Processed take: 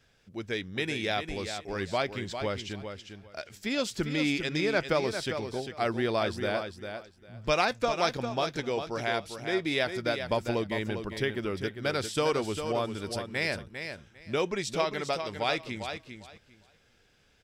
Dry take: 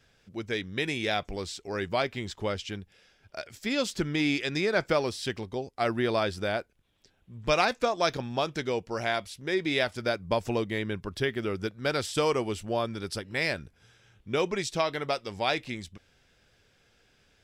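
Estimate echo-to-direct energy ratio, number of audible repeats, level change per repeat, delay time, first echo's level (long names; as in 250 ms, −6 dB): −8.0 dB, 2, −15.0 dB, 400 ms, −8.0 dB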